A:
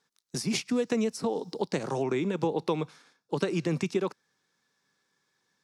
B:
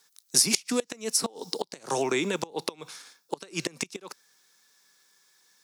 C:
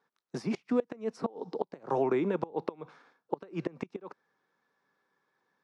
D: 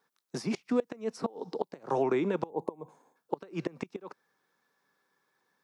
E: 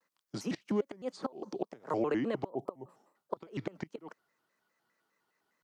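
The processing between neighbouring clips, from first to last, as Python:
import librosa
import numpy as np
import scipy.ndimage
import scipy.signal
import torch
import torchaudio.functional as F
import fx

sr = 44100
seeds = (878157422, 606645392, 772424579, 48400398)

y1 = fx.gate_flip(x, sr, shuts_db=-18.0, range_db=-24)
y1 = fx.riaa(y1, sr, side='recording')
y1 = y1 * librosa.db_to_amplitude(5.5)
y2 = scipy.signal.sosfilt(scipy.signal.butter(2, 1100.0, 'lowpass', fs=sr, output='sos'), y1)
y3 = fx.spec_box(y2, sr, start_s=2.5, length_s=0.66, low_hz=1100.0, high_hz=6200.0, gain_db=-17)
y3 = fx.high_shelf(y3, sr, hz=4400.0, db=10.5)
y4 = fx.vibrato_shape(y3, sr, shape='square', rate_hz=4.9, depth_cents=250.0)
y4 = y4 * librosa.db_to_amplitude(-3.5)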